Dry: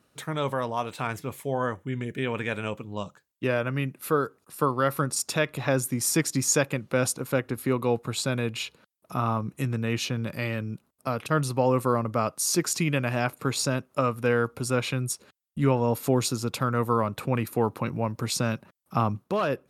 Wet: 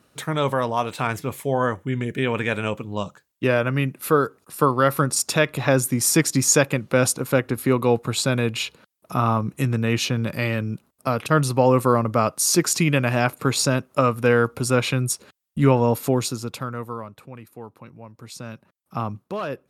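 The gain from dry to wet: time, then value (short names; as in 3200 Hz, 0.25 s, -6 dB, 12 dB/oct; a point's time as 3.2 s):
15.81 s +6 dB
16.59 s -2.5 dB
17.32 s -14 dB
18.06 s -14 dB
19 s -2.5 dB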